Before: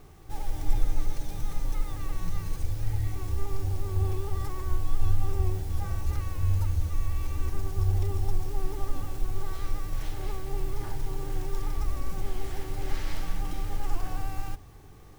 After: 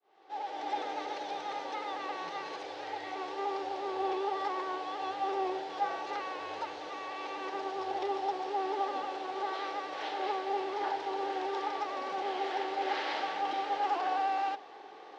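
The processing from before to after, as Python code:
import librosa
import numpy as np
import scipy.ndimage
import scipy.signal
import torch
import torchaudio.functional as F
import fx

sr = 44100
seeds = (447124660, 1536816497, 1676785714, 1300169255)

y = fx.fade_in_head(x, sr, length_s=0.79)
y = fx.cabinet(y, sr, low_hz=400.0, low_slope=24, high_hz=4100.0, hz=(800.0, 1200.0, 2300.0), db=(6, -3, -3))
y = y * 10.0 ** (8.5 / 20.0)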